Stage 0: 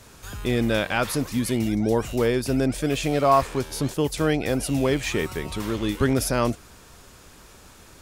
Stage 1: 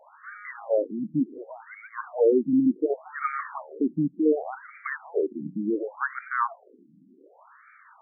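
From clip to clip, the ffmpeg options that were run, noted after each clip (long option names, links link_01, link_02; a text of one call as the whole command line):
ffmpeg -i in.wav -af "afftfilt=real='re*between(b*sr/1024,220*pow(1700/220,0.5+0.5*sin(2*PI*0.68*pts/sr))/1.41,220*pow(1700/220,0.5+0.5*sin(2*PI*0.68*pts/sr))*1.41)':imag='im*between(b*sr/1024,220*pow(1700/220,0.5+0.5*sin(2*PI*0.68*pts/sr))/1.41,220*pow(1700/220,0.5+0.5*sin(2*PI*0.68*pts/sr))*1.41)':win_size=1024:overlap=0.75,volume=4dB" out.wav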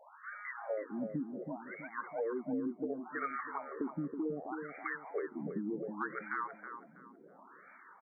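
ffmpeg -i in.wav -filter_complex "[0:a]acompressor=threshold=-31dB:ratio=6,asplit=2[link_01][link_02];[link_02]adelay=324,lowpass=frequency=1300:poles=1,volume=-6.5dB,asplit=2[link_03][link_04];[link_04]adelay=324,lowpass=frequency=1300:poles=1,volume=0.39,asplit=2[link_05][link_06];[link_06]adelay=324,lowpass=frequency=1300:poles=1,volume=0.39,asplit=2[link_07][link_08];[link_08]adelay=324,lowpass=frequency=1300:poles=1,volume=0.39,asplit=2[link_09][link_10];[link_10]adelay=324,lowpass=frequency=1300:poles=1,volume=0.39[link_11];[link_03][link_05][link_07][link_09][link_11]amix=inputs=5:normalize=0[link_12];[link_01][link_12]amix=inputs=2:normalize=0,volume=-4dB" out.wav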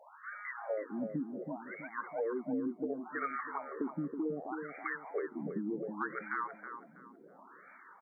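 ffmpeg -i in.wav -af "highpass=110,volume=1dB" out.wav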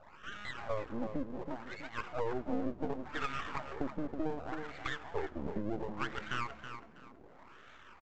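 ffmpeg -i in.wav -filter_complex "[0:a]aresample=16000,aeval=exprs='max(val(0),0)':channel_layout=same,aresample=44100,asplit=6[link_01][link_02][link_03][link_04][link_05][link_06];[link_02]adelay=104,afreqshift=-71,volume=-23dB[link_07];[link_03]adelay=208,afreqshift=-142,volume=-26.7dB[link_08];[link_04]adelay=312,afreqshift=-213,volume=-30.5dB[link_09];[link_05]adelay=416,afreqshift=-284,volume=-34.2dB[link_10];[link_06]adelay=520,afreqshift=-355,volume=-38dB[link_11];[link_01][link_07][link_08][link_09][link_10][link_11]amix=inputs=6:normalize=0,volume=4dB" out.wav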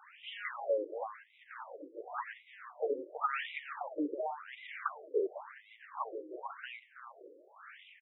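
ffmpeg -i in.wav -af "afftfilt=real='re*between(b*sr/1024,390*pow(2800/390,0.5+0.5*sin(2*PI*0.92*pts/sr))/1.41,390*pow(2800/390,0.5+0.5*sin(2*PI*0.92*pts/sr))*1.41)':imag='im*between(b*sr/1024,390*pow(2800/390,0.5+0.5*sin(2*PI*0.92*pts/sr))/1.41,390*pow(2800/390,0.5+0.5*sin(2*PI*0.92*pts/sr))*1.41)':win_size=1024:overlap=0.75,volume=7.5dB" out.wav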